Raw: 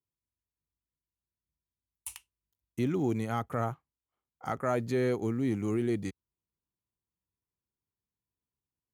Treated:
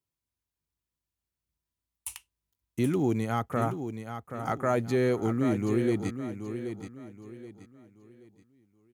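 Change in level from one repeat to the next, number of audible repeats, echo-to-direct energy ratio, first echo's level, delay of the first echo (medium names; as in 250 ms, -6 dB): -9.5 dB, 3, -8.5 dB, -9.0 dB, 777 ms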